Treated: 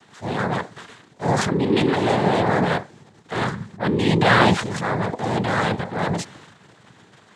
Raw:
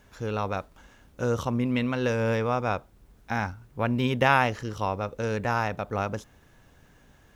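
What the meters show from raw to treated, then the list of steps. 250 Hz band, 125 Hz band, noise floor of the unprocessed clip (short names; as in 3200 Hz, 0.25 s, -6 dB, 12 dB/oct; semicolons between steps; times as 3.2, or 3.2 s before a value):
+7.5 dB, +6.0 dB, -58 dBFS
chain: transient shaper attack -7 dB, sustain +9 dB; noise vocoder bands 6; gain +7 dB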